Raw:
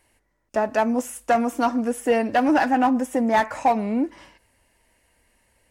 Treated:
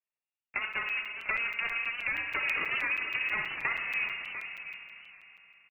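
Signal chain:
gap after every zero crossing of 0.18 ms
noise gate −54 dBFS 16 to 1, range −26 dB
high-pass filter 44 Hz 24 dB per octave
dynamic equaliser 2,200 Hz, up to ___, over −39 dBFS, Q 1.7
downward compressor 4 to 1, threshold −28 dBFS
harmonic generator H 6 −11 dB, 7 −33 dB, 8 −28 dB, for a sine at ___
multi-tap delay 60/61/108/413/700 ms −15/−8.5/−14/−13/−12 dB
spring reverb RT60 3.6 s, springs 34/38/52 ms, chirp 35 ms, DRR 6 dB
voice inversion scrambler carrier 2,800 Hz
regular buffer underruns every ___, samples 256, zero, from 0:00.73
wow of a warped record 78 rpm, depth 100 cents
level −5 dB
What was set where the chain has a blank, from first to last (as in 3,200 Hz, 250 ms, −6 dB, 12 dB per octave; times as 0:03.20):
−4 dB, −16 dBFS, 0.16 s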